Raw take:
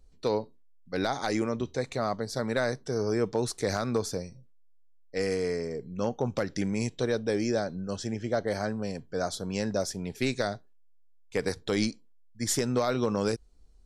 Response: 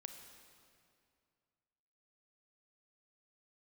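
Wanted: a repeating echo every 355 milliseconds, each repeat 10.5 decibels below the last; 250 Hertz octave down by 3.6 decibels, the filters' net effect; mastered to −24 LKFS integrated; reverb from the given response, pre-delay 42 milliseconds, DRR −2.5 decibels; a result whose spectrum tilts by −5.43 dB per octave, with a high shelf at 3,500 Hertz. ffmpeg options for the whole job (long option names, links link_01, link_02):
-filter_complex "[0:a]equalizer=frequency=250:width_type=o:gain=-4.5,highshelf=frequency=3500:gain=-8.5,aecho=1:1:355|710|1065:0.299|0.0896|0.0269,asplit=2[link_01][link_02];[1:a]atrim=start_sample=2205,adelay=42[link_03];[link_02][link_03]afir=irnorm=-1:irlink=0,volume=7dB[link_04];[link_01][link_04]amix=inputs=2:normalize=0,volume=4dB"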